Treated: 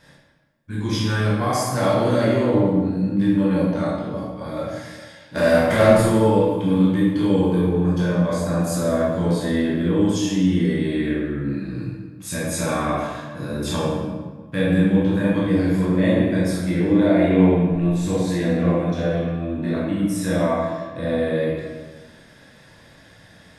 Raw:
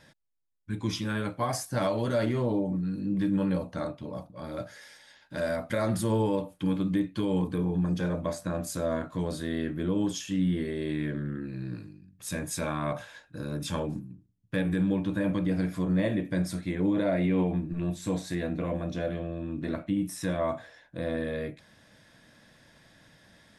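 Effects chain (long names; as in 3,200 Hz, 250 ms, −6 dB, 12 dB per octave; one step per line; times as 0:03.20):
0:05.35–0:05.93: leveller curve on the samples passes 2
convolution reverb RT60 1.4 s, pre-delay 14 ms, DRR −7 dB
level +1.5 dB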